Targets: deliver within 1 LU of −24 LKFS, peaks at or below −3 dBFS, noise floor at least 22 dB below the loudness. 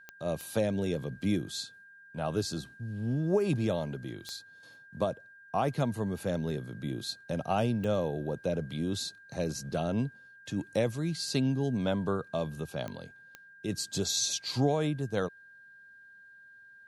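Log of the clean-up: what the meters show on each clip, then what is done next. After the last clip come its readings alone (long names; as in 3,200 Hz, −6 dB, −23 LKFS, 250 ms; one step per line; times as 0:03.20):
number of clicks 6; interfering tone 1,600 Hz; level of the tone −52 dBFS; integrated loudness −32.5 LKFS; sample peak −16.5 dBFS; target loudness −24.0 LKFS
→ click removal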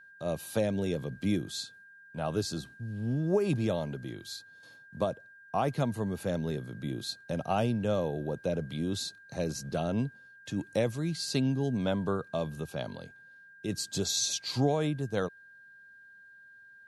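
number of clicks 0; interfering tone 1,600 Hz; level of the tone −52 dBFS
→ notch filter 1,600 Hz, Q 30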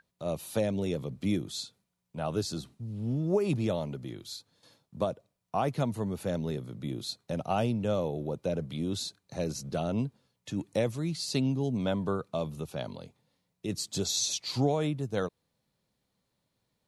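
interfering tone none found; integrated loudness −32.5 LKFS; sample peak −16.5 dBFS; target loudness −24.0 LKFS
→ level +8.5 dB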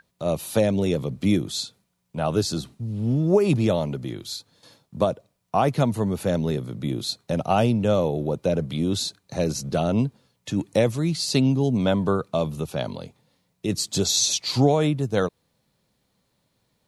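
integrated loudness −24.0 LKFS; sample peak −8.0 dBFS; background noise floor −72 dBFS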